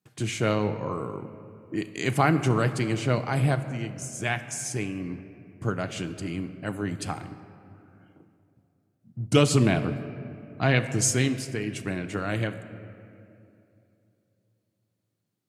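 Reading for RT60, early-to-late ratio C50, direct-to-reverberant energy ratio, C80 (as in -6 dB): 2.7 s, 11.5 dB, 9.0 dB, 12.5 dB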